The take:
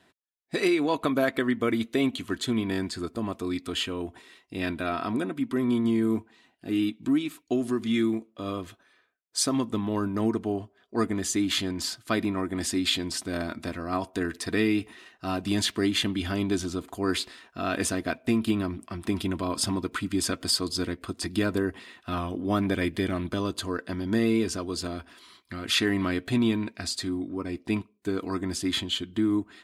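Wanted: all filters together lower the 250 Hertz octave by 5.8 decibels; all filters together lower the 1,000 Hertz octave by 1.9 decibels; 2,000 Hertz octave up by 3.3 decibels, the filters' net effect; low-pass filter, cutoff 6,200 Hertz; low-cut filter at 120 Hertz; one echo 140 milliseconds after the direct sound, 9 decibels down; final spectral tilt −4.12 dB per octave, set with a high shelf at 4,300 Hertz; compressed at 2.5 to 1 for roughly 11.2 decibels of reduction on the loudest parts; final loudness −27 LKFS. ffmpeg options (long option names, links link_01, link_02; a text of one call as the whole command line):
ffmpeg -i in.wav -af "highpass=120,lowpass=6200,equalizer=frequency=250:width_type=o:gain=-7,equalizer=frequency=1000:width_type=o:gain=-4,equalizer=frequency=2000:width_type=o:gain=6.5,highshelf=frequency=4300:gain=-5.5,acompressor=threshold=-38dB:ratio=2.5,aecho=1:1:140:0.355,volume=11.5dB" out.wav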